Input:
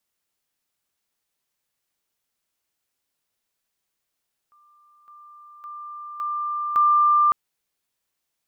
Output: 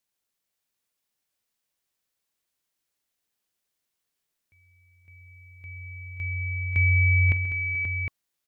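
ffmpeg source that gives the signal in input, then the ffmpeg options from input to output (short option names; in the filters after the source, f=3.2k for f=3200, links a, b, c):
-f lavfi -i "aevalsrc='pow(10,(-54+10*floor(t/0.56))/20)*sin(2*PI*1190*t)':d=2.8:s=44100"
-filter_complex "[0:a]equalizer=f=120:w=0.57:g=-12.5,aeval=exprs='val(0)*sin(2*PI*1100*n/s)':c=same,asplit=2[a][b];[b]aecho=0:1:46|133|433|532|759:0.133|0.178|0.141|0.376|0.398[c];[a][c]amix=inputs=2:normalize=0"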